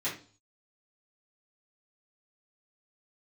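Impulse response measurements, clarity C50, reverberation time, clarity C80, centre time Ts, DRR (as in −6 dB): 8.0 dB, 0.40 s, 14.0 dB, 26 ms, −11.0 dB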